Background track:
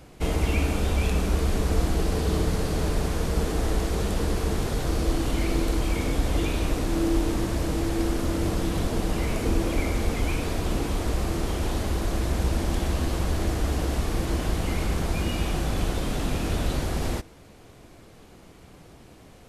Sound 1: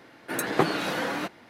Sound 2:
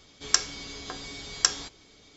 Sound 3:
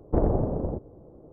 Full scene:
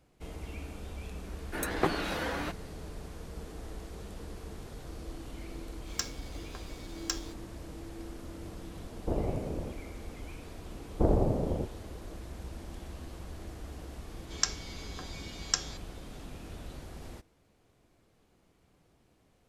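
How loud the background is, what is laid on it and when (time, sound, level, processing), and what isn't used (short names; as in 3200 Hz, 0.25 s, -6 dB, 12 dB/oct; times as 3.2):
background track -18 dB
1.24 add 1 -5.5 dB
5.65 add 2 -16.5 dB + sample leveller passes 2
8.94 add 3 -8.5 dB
10.87 add 3 -2.5 dB
14.09 add 2 -7 dB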